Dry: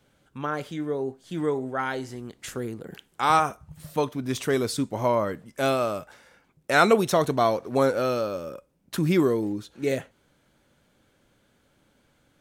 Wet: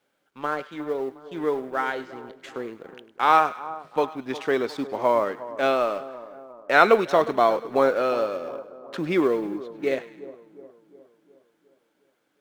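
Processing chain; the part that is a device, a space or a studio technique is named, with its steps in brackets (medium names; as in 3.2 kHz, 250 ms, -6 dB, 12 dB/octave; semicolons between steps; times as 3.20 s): phone line with mismatched companding (band-pass 330–3200 Hz; companding laws mixed up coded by A); two-band feedback delay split 1.2 kHz, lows 359 ms, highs 102 ms, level -15.5 dB; trim +3.5 dB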